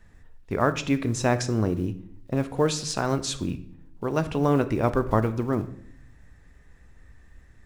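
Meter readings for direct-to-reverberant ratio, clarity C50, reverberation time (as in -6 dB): 11.0 dB, 14.5 dB, 0.65 s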